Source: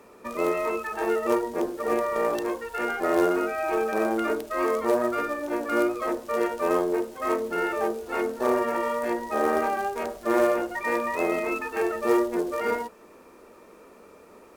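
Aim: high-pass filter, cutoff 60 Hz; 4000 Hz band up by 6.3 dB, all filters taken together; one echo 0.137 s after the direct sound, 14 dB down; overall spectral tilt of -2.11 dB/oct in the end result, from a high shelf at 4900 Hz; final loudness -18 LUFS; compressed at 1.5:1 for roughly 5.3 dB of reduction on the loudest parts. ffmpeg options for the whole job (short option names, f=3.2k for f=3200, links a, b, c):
-af "highpass=60,equalizer=f=4k:t=o:g=7,highshelf=f=4.9k:g=3.5,acompressor=threshold=-32dB:ratio=1.5,aecho=1:1:137:0.2,volume=11.5dB"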